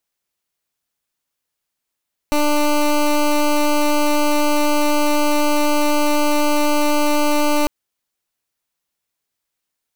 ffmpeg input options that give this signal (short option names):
-f lavfi -i "aevalsrc='0.168*(2*lt(mod(296*t,1),0.17)-1)':d=5.35:s=44100"